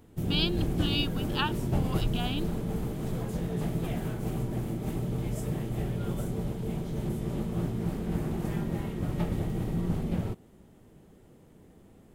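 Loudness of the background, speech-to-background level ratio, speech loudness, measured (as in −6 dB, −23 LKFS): −32.5 LKFS, −0.5 dB, −33.0 LKFS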